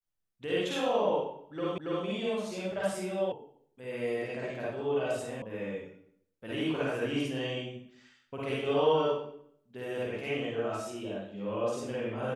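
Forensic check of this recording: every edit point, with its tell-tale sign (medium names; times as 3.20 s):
1.78 s: repeat of the last 0.28 s
3.32 s: sound stops dead
5.42 s: sound stops dead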